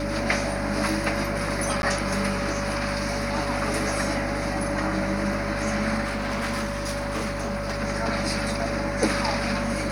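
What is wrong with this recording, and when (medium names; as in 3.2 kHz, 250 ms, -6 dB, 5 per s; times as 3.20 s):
hum 50 Hz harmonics 5 -32 dBFS
whine 570 Hz -31 dBFS
1.82–1.83 s: dropout 11 ms
6.03–7.78 s: clipped -23.5 dBFS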